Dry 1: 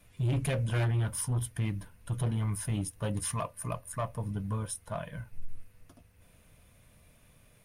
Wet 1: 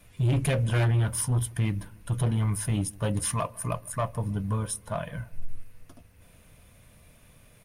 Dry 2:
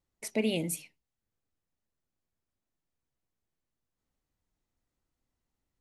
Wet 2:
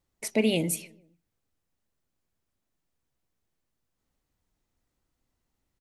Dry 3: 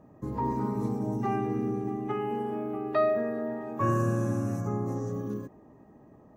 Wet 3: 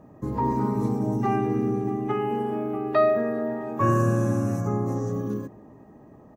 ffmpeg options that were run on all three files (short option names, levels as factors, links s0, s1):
-filter_complex "[0:a]asplit=2[s0][s1];[s1]adelay=153,lowpass=f=1200:p=1,volume=0.075,asplit=2[s2][s3];[s3]adelay=153,lowpass=f=1200:p=1,volume=0.48,asplit=2[s4][s5];[s5]adelay=153,lowpass=f=1200:p=1,volume=0.48[s6];[s0][s2][s4][s6]amix=inputs=4:normalize=0,volume=1.78"